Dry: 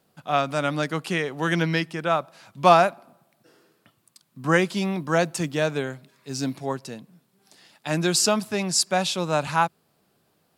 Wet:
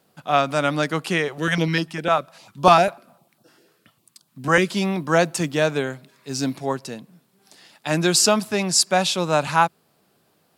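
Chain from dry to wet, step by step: low shelf 87 Hz -7.5 dB; 1.28–4.7 stepped notch 10 Hz 250–2100 Hz; gain +4 dB

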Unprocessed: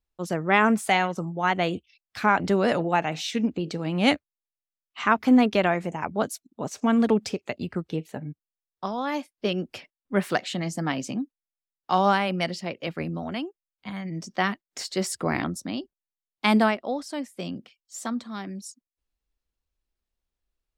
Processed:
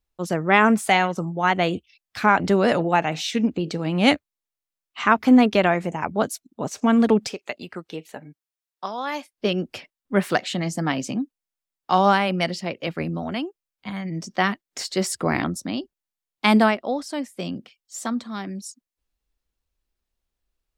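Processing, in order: 7.27–9.33 HPF 700 Hz 6 dB/oct; gain +3.5 dB

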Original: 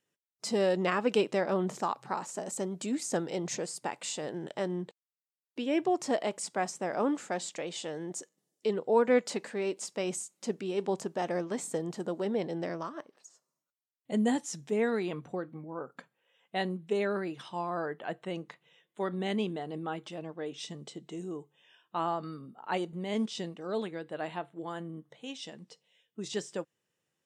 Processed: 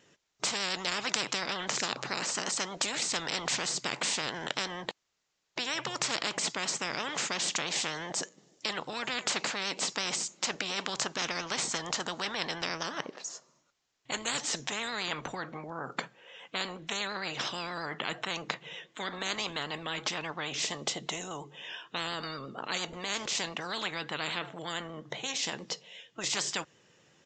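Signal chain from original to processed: vibrato 8.6 Hz 43 cents; downsampling 16000 Hz; spectral compressor 10:1; gain +6.5 dB

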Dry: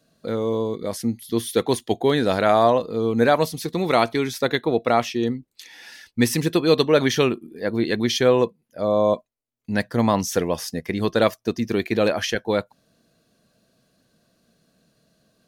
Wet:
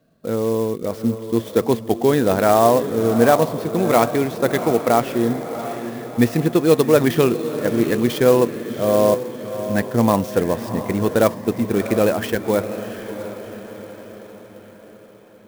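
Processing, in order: LPF 1500 Hz 6 dB/oct; diffused feedback echo 0.704 s, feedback 52%, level -10.5 dB; clock jitter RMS 0.033 ms; gain +3.5 dB

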